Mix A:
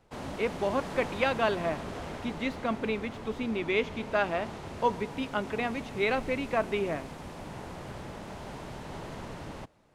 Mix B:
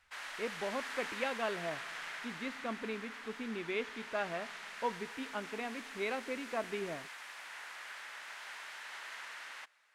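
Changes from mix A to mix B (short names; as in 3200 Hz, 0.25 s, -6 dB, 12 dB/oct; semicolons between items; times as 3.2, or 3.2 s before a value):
speech -9.0 dB; background: add resonant high-pass 1700 Hz, resonance Q 2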